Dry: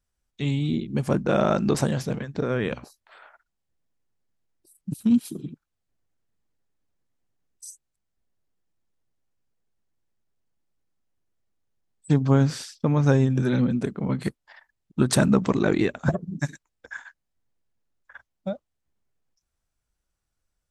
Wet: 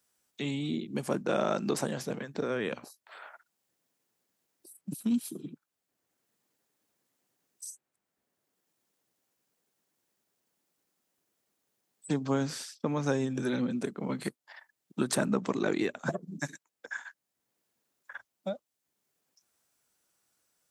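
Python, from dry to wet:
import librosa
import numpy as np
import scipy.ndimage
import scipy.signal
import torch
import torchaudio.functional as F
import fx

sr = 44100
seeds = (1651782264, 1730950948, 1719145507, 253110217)

y = scipy.signal.sosfilt(scipy.signal.butter(2, 230.0, 'highpass', fs=sr, output='sos'), x)
y = fx.high_shelf(y, sr, hz=6800.0, db=8.5)
y = fx.band_squash(y, sr, depth_pct=40)
y = F.gain(torch.from_numpy(y), -5.5).numpy()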